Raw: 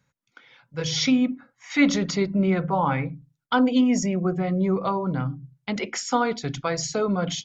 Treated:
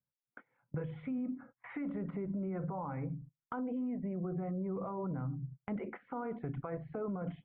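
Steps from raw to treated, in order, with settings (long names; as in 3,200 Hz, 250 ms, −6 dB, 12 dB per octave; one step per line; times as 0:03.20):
noise gate −48 dBFS, range −26 dB
automatic gain control gain up to 11.5 dB
brickwall limiter −16.5 dBFS, peak gain reduction 15 dB
downward compressor 5 to 1, threshold −39 dBFS, peak gain reduction 17 dB
Gaussian smoothing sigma 5.5 samples
level +2 dB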